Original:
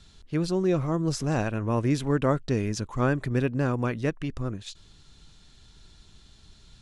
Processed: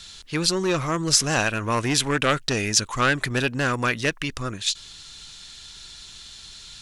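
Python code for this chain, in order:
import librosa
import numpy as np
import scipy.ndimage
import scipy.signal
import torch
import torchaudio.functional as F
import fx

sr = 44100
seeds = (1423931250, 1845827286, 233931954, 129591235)

y = fx.fold_sine(x, sr, drive_db=5, ceiling_db=-11.0)
y = fx.tilt_shelf(y, sr, db=-9.5, hz=970.0)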